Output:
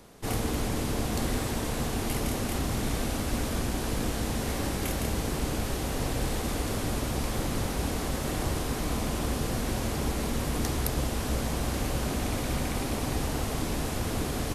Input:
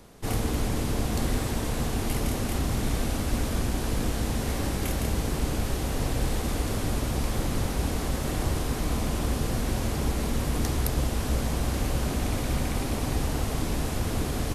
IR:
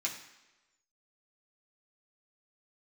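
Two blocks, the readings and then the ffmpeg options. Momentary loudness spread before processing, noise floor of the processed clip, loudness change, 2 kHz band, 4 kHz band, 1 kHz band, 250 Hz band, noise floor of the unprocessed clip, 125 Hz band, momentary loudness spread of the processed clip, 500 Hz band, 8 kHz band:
1 LU, −32 dBFS, −1.5 dB, 0.0 dB, 0.0 dB, 0.0 dB, −1.0 dB, −31 dBFS, −3.0 dB, 1 LU, −0.5 dB, 0.0 dB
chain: -af "lowshelf=frequency=130:gain=-5"

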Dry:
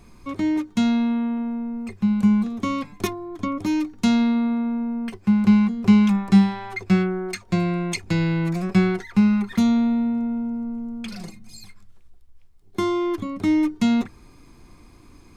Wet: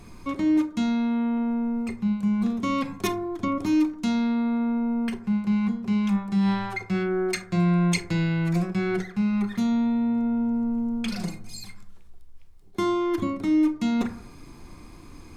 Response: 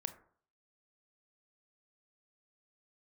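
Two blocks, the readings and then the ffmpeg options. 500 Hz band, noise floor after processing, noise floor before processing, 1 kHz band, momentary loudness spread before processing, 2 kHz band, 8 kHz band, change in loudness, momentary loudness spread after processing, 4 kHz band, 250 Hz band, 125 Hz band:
−1.0 dB, −46 dBFS, −50 dBFS, −1.5 dB, 12 LU, −2.0 dB, −0.5 dB, −3.5 dB, 6 LU, −2.5 dB, −3.5 dB, −3.0 dB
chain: -filter_complex "[0:a]areverse,acompressor=threshold=-25dB:ratio=12,areverse,bandreject=frequency=50:width_type=h:width=6,bandreject=frequency=100:width_type=h:width=6[link_01];[1:a]atrim=start_sample=2205,asetrate=41454,aresample=44100[link_02];[link_01][link_02]afir=irnorm=-1:irlink=0,volume=5.5dB"

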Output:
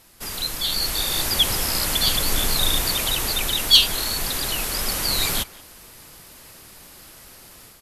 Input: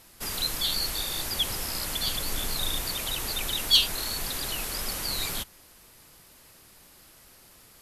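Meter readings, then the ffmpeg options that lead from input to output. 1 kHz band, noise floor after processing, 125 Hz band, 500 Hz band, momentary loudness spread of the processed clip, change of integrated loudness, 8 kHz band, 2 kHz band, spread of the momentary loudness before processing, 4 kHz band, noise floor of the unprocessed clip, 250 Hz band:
+7.5 dB, −46 dBFS, +8.0 dB, +7.5 dB, 10 LU, +7.5 dB, +7.5 dB, +7.5 dB, 9 LU, +7.0 dB, −55 dBFS, +7.5 dB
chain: -filter_complex "[0:a]dynaudnorm=framelen=590:gausssize=3:maxgain=8dB,asplit=2[link_01][link_02];[link_02]adelay=180,highpass=300,lowpass=3400,asoftclip=type=hard:threshold=-11.5dB,volume=-20dB[link_03];[link_01][link_03]amix=inputs=2:normalize=0,volume=1dB"

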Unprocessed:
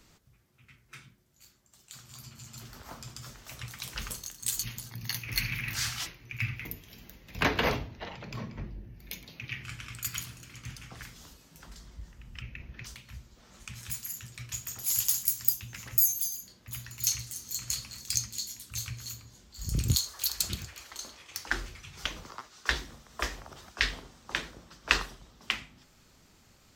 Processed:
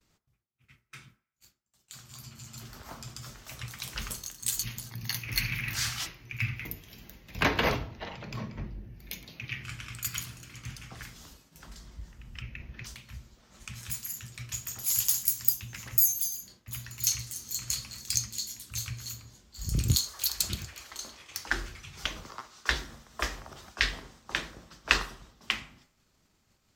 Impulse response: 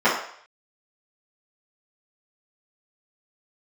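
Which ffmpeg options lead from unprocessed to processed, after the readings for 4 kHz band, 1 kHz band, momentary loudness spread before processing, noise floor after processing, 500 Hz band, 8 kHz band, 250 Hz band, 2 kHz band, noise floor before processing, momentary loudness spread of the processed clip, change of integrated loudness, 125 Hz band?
+1.0 dB, +1.0 dB, 20 LU, −72 dBFS, +0.5 dB, +1.0 dB, +1.0 dB, +1.0 dB, −62 dBFS, 20 LU, +1.0 dB, +1.5 dB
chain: -filter_complex "[0:a]agate=range=-33dB:threshold=-52dB:ratio=3:detection=peak,asplit=2[link_01][link_02];[1:a]atrim=start_sample=2205[link_03];[link_02][link_03]afir=irnorm=-1:irlink=0,volume=-34.5dB[link_04];[link_01][link_04]amix=inputs=2:normalize=0,volume=1dB"

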